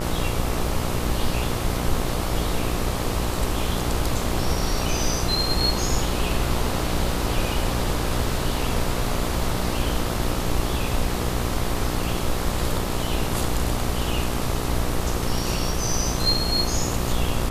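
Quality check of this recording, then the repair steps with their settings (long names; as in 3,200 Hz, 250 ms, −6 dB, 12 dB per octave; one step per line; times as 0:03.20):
mains buzz 60 Hz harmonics 22 −28 dBFS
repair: hum removal 60 Hz, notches 22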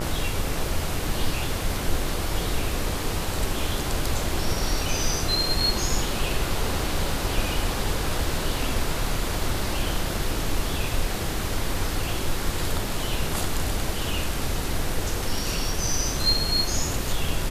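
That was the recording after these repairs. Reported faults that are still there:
none of them is left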